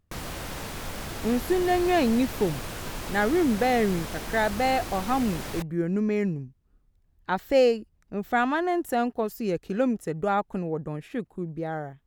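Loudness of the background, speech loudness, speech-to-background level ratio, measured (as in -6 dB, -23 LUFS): -35.5 LUFS, -26.5 LUFS, 9.0 dB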